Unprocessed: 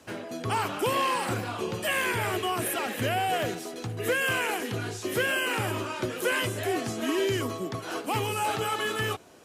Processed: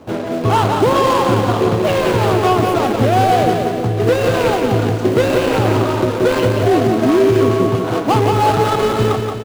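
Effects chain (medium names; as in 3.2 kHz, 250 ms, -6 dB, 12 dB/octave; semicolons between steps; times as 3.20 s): median filter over 25 samples; peaking EQ 13 kHz -3 dB 1.2 oct; on a send: feedback delay 176 ms, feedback 52%, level -5.5 dB; on the sum: loudness maximiser +20 dB; trim -3.5 dB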